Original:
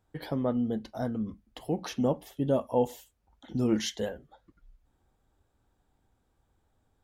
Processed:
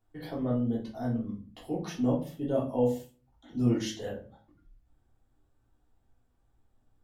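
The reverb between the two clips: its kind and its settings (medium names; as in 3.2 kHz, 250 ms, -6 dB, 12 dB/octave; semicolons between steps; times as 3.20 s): simulated room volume 230 m³, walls furnished, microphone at 3.3 m; trim -9.5 dB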